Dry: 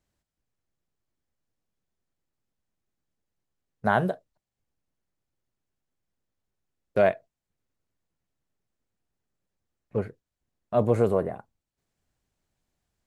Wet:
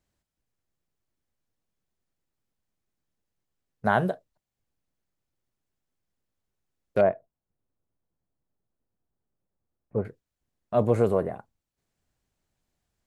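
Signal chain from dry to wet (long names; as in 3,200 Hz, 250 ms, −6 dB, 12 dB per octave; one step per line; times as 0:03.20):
0:07.01–0:10.05: low-pass filter 1,100 Hz 12 dB per octave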